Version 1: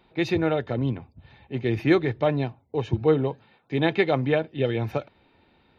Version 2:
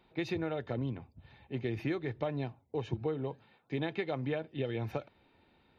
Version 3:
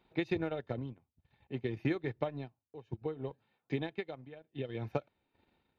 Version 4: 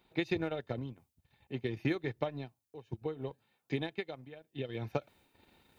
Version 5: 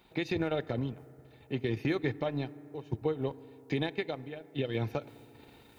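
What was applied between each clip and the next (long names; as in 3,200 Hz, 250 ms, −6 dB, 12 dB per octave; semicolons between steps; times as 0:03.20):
downward compressor 10 to 1, threshold −24 dBFS, peak gain reduction 11 dB; level −6 dB
transient designer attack +5 dB, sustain −12 dB; shaped tremolo triangle 0.64 Hz, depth 90%
high-shelf EQ 4,100 Hz +10 dB; reversed playback; upward compression, threshold −56 dBFS; reversed playback
brickwall limiter −27.5 dBFS, peak gain reduction 9.5 dB; convolution reverb RT60 3.2 s, pre-delay 4 ms, DRR 18 dB; level +7 dB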